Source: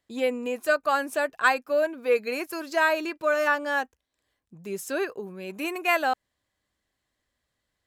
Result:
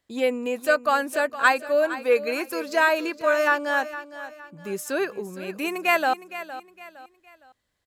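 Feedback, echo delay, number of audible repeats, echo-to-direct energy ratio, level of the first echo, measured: 36%, 462 ms, 3, −13.5 dB, −14.0 dB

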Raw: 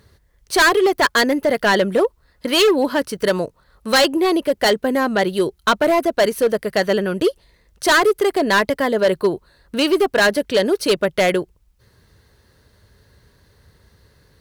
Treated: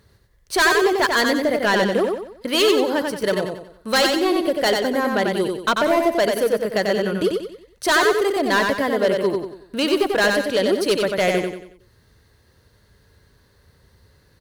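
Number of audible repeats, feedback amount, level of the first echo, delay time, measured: 4, 39%, −4.0 dB, 92 ms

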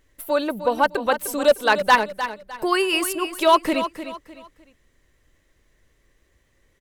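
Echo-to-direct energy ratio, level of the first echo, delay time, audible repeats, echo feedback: −10.5 dB, −11.0 dB, 304 ms, 3, 31%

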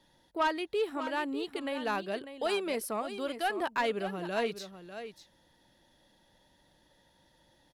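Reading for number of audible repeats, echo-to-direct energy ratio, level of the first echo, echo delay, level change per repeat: 1, −11.0 dB, −11.0 dB, 597 ms, repeats not evenly spaced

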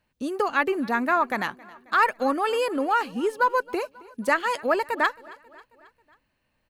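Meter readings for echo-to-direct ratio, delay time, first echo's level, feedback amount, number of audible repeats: −21.0 dB, 270 ms, −22.5 dB, 57%, 3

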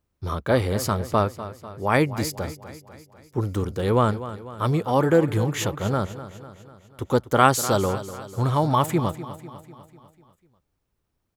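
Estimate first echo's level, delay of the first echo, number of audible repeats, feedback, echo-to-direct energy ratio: −14.0 dB, 248 ms, 5, 55%, −12.5 dB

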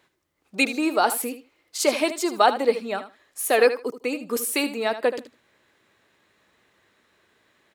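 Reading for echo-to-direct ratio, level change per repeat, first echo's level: −12.0 dB, −16.5 dB, −12.0 dB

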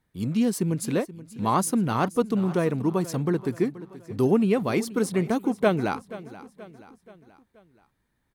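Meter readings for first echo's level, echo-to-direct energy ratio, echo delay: −17.0 dB, −16.0 dB, 479 ms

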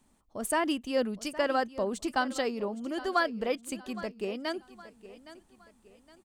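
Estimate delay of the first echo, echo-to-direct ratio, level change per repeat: 815 ms, −16.0 dB, −8.5 dB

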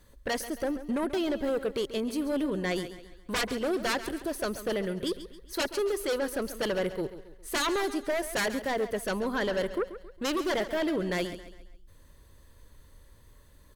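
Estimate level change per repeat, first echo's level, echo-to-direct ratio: −7.5 dB, −13.0 dB, −12.0 dB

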